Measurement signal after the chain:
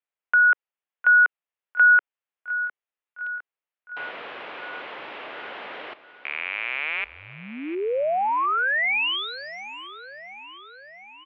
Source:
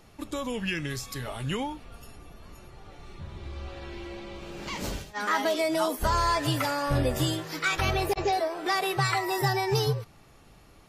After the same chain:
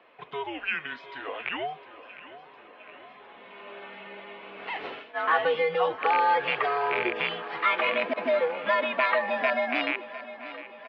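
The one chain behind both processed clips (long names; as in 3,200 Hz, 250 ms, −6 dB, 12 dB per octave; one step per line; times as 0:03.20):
loose part that buzzes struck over −27 dBFS, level −18 dBFS
repeating echo 707 ms, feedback 60%, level −15.5 dB
single-sideband voice off tune −150 Hz 570–3,200 Hz
level +3.5 dB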